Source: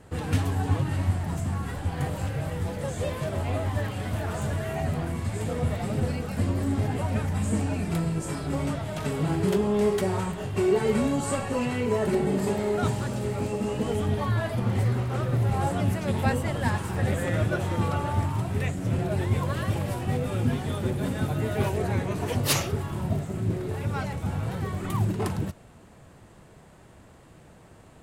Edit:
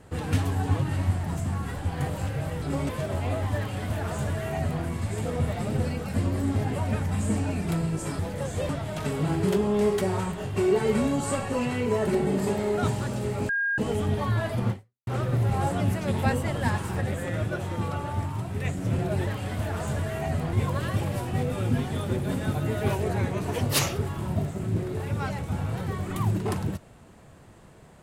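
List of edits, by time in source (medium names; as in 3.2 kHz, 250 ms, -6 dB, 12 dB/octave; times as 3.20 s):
2.62–3.12 s: swap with 8.42–8.69 s
3.81–5.07 s: copy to 19.27 s
13.49–13.78 s: bleep 1.62 kHz -23 dBFS
14.71–15.07 s: fade out exponential
17.01–18.65 s: gain -3.5 dB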